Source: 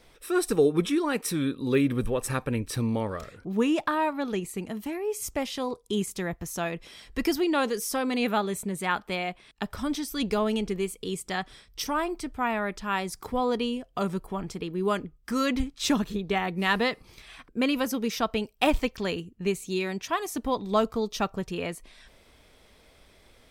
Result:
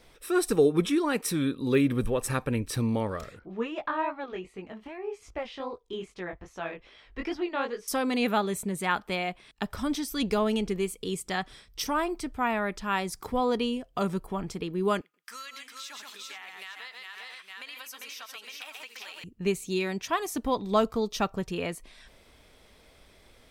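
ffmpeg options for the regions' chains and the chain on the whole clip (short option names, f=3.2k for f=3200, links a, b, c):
-filter_complex "[0:a]asettb=1/sr,asplit=3[a][b][c];[a]atrim=end=3.394[d];[b]atrim=start=3.39:end=7.88,asetpts=PTS-STARTPTS,afade=t=in:d=0.004:c=qsin,afade=t=out:st=4.486:d=0.004:c=qsin,lowpass=2.8k,equalizer=f=160:w=0.9:g=-10.5,flanger=delay=16:depth=6.3:speed=2.5[e];[c]atrim=start=7.876[f];[d][e]acrossfade=d=0.004:c1=hsin:c2=qsin[g];[g][f]acrossfade=d=0.004:c1=qsin:c2=hsin,asettb=1/sr,asplit=3[h][i][j];[h]atrim=end=15.014[k];[i]atrim=start=15.01:end=19.24,asetpts=PTS-STARTPTS,afade=t=in:d=0.004:c=qsin,afade=t=out:st=4.226:d=0.004:c=qsin,highpass=1.5k,aecho=1:1:127|399|485|861:0.316|0.398|0.178|0.266,atrim=end_sample=186543,acompressor=threshold=-38dB:ratio=8:attack=3.2:release=140:knee=1:detection=peak[l];[j]atrim=start=19.236[m];[k][l]acrossfade=d=0.004:c1=hsin:c2=qsin[n];[n][m]acrossfade=d=0.004:c1=qsin:c2=hsin"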